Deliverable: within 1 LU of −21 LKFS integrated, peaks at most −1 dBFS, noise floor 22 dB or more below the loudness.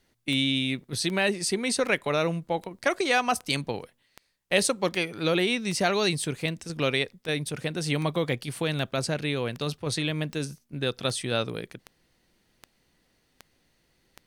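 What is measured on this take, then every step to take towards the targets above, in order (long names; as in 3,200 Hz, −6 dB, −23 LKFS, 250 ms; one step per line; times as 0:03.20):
number of clicks 19; integrated loudness −27.5 LKFS; sample peak −6.5 dBFS; target loudness −21.0 LKFS
→ click removal
level +6.5 dB
brickwall limiter −1 dBFS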